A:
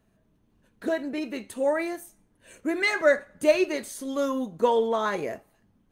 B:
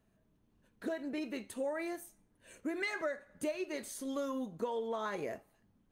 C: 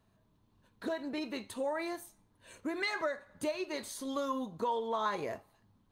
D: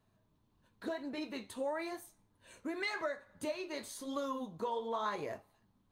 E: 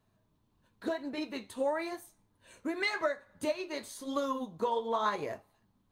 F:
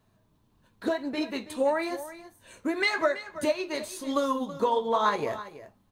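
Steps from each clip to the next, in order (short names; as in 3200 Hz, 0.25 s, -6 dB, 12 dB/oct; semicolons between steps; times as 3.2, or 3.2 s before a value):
compressor 10:1, threshold -27 dBFS, peak gain reduction 13.5 dB; gain -6 dB
fifteen-band EQ 100 Hz +7 dB, 1000 Hz +9 dB, 4000 Hz +8 dB
flange 0.95 Hz, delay 6.3 ms, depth 9.8 ms, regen -57%; gain +1 dB
upward expander 1.5:1, over -45 dBFS; gain +7 dB
echo 0.328 s -14.5 dB; gain +6 dB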